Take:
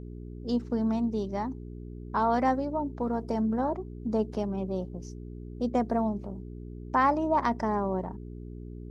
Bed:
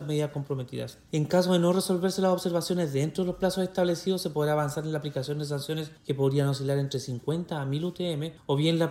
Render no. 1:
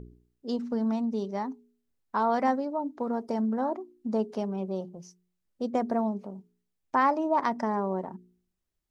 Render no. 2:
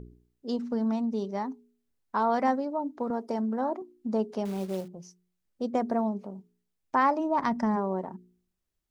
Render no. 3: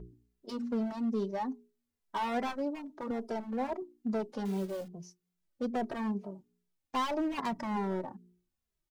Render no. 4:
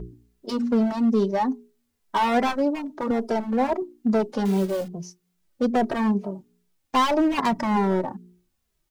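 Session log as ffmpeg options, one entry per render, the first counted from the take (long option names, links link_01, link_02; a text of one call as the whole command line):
ffmpeg -i in.wav -af "bandreject=frequency=60:width_type=h:width=4,bandreject=frequency=120:width_type=h:width=4,bandreject=frequency=180:width_type=h:width=4,bandreject=frequency=240:width_type=h:width=4,bandreject=frequency=300:width_type=h:width=4,bandreject=frequency=360:width_type=h:width=4,bandreject=frequency=420:width_type=h:width=4" out.wav
ffmpeg -i in.wav -filter_complex "[0:a]asettb=1/sr,asplit=3[link_01][link_02][link_03];[link_01]atrim=end=3.104[link_04];[link_02]atrim=start=3.1:end=3.82,asetpts=PTS-STARTPTS,afade=type=in:duration=0.004:curve=qsin,afade=type=out:start_time=0.716:duration=0.004:curve=qsin,highpass=190[link_05];[link_03]atrim=start=3.816[link_06];[link_04][link_05]acrossfade=duration=0.004:curve1=hsin:curve2=qsin[link_07];[link_07][link_06]acrossfade=duration=0.004:curve1=qsin:curve2=hsin,asettb=1/sr,asplit=3[link_08][link_09][link_10];[link_08]atrim=end=4.454[link_11];[link_09]atrim=start=4.45:end=4.88,asetpts=PTS-STARTPTS,afade=type=in:duration=0.004:curve=qsin,afade=type=out:start_time=0.426:duration=0.004:curve=qsin,acrusher=bits=4:mode=log:mix=0:aa=0.000001[link_12];[link_10]atrim=start=4.876[link_13];[link_11][link_12]acrossfade=duration=0.004:curve1=hsin:curve2=qsin[link_14];[link_14][link_13]acrossfade=duration=0.004:curve1=qsin:curve2=hsin,asplit=3[link_15][link_16][link_17];[link_15]afade=type=out:start_time=7.19:duration=0.02[link_18];[link_16]asubboost=boost=5:cutoff=180,afade=type=in:start_time=7.19:duration=0.02,afade=type=out:start_time=7.75:duration=0.02[link_19];[link_17]afade=type=in:start_time=7.75:duration=0.02[link_20];[link_18][link_19][link_20]amix=inputs=3:normalize=0" out.wav
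ffmpeg -i in.wav -filter_complex "[0:a]volume=26.5dB,asoftclip=hard,volume=-26.5dB,asplit=2[link_01][link_02];[link_02]adelay=2.6,afreqshift=-2.4[link_03];[link_01][link_03]amix=inputs=2:normalize=1" out.wav
ffmpeg -i in.wav -af "volume=11.5dB" out.wav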